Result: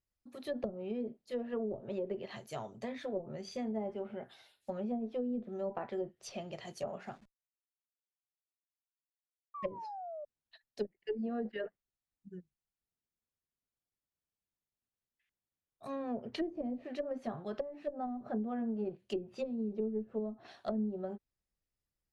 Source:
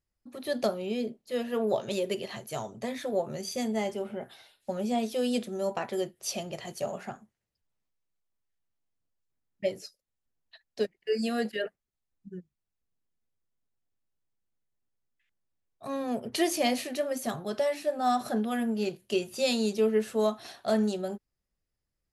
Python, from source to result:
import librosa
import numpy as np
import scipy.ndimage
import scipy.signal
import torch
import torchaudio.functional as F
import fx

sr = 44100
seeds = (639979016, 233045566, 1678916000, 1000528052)

y = fx.delta_hold(x, sr, step_db=-52.5, at=(7.06, 9.81))
y = fx.spec_paint(y, sr, seeds[0], shape='fall', start_s=9.54, length_s=0.71, low_hz=580.0, high_hz=1200.0, level_db=-37.0)
y = fx.cheby_harmonics(y, sr, harmonics=(2, 3), levels_db=(-19, -27), full_scale_db=-13.5)
y = fx.env_lowpass_down(y, sr, base_hz=310.0, full_db=-24.5)
y = F.gain(torch.from_numpy(y), -5.0).numpy()